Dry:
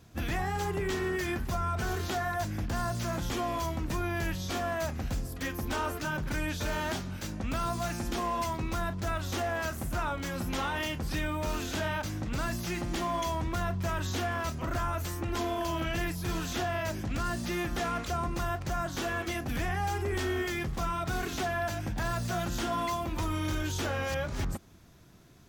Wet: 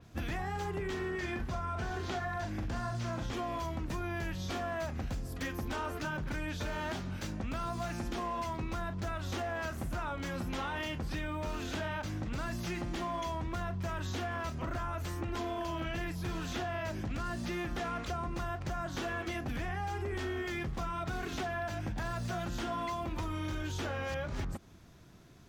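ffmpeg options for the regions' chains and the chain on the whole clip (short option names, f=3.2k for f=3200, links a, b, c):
-filter_complex "[0:a]asettb=1/sr,asplit=3[a][b][c];[a]atrim=end=1.114[d];[b]atrim=start=1.11:end=3.33,asetpts=PTS-STARTPTS,afade=t=in:d=0.004:c=qsin,afade=t=out:st=2.216:d=0.004:c=qsin,acrossover=split=8500[e][f];[f]acompressor=threshold=-59dB:ratio=4:attack=1:release=60[g];[e][g]amix=inputs=2:normalize=0,asplit=2[h][i];[i]adelay=42,volume=-5.5dB[j];[h][j]amix=inputs=2:normalize=0,atrim=end_sample=97902[k];[c]atrim=start=3.326[l];[d][k]acrossfade=d=0.004:c1=hsin:c2=qsin[m];[m][l]acrossfade=d=0.004:c1=qsin:c2=hsin,highshelf=f=9.4k:g=-8,acompressor=threshold=-33dB:ratio=6,adynamicequalizer=threshold=0.00224:dfrequency=4500:dqfactor=0.7:tfrequency=4500:tqfactor=0.7:attack=5:release=100:ratio=0.375:range=2:mode=cutabove:tftype=highshelf"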